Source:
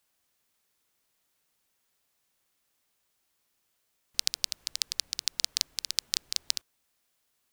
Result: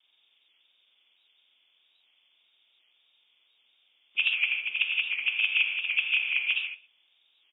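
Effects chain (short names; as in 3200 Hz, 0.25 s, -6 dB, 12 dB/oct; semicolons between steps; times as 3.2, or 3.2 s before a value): nonlinear frequency compression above 1900 Hz 4:1; HPF 230 Hz 6 dB/oct; frequency shift +110 Hz; on a send: echo 0.121 s -20.5 dB; on the sum: vibrato 1.7 Hz 52 cents; non-linear reverb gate 0.18 s flat, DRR 2.5 dB; record warp 78 rpm, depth 100 cents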